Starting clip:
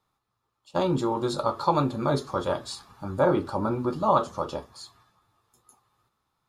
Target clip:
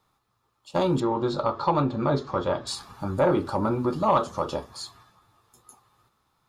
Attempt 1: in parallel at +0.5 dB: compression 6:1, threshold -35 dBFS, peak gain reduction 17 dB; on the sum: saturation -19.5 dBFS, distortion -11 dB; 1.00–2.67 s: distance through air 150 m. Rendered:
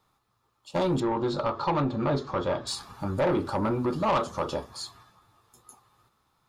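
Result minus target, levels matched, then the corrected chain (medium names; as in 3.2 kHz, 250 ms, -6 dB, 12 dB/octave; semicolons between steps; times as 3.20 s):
saturation: distortion +11 dB
in parallel at +0.5 dB: compression 6:1, threshold -35 dBFS, peak gain reduction 17 dB; on the sum: saturation -10.5 dBFS, distortion -22 dB; 1.00–2.67 s: distance through air 150 m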